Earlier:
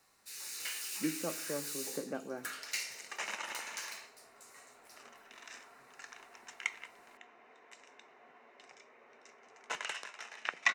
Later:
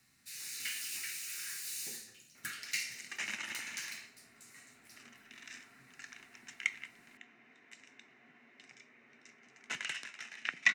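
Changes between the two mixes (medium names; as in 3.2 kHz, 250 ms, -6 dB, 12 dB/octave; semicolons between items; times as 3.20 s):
speech: muted; reverb: off; master: add graphic EQ 125/250/500/1000/2000 Hz +9/+7/-11/-10/+5 dB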